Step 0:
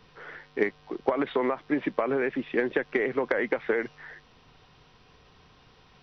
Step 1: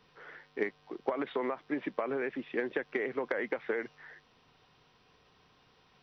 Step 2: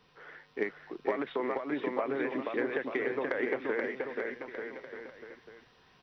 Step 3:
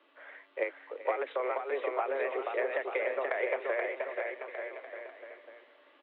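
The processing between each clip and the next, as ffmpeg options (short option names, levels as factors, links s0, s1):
-af "lowshelf=f=92:g=-11,volume=0.473"
-af "aecho=1:1:480|888|1235|1530|1780:0.631|0.398|0.251|0.158|0.1"
-af "highpass=f=150:t=q:w=0.5412,highpass=f=150:t=q:w=1.307,lowpass=f=3300:t=q:w=0.5176,lowpass=f=3300:t=q:w=0.7071,lowpass=f=3300:t=q:w=1.932,afreqshift=130,aecho=1:1:386|772|1158|1544:0.141|0.0607|0.0261|0.0112"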